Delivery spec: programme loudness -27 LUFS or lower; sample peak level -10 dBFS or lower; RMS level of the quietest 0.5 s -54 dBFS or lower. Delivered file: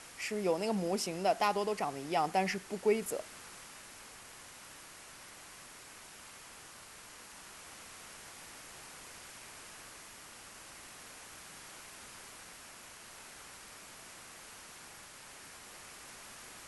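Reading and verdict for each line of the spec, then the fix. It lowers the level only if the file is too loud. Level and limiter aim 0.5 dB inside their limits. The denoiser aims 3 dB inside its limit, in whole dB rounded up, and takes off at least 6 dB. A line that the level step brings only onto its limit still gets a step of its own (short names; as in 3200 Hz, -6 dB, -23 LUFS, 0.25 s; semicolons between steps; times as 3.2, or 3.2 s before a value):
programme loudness -39.5 LUFS: OK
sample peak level -17.5 dBFS: OK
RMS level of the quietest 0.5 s -53 dBFS: fail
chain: denoiser 6 dB, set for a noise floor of -53 dBFS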